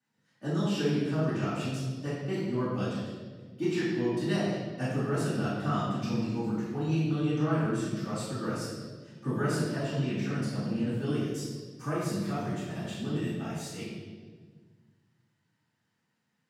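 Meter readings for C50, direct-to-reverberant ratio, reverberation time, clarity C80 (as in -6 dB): -1.0 dB, -13.0 dB, 1.5 s, 2.0 dB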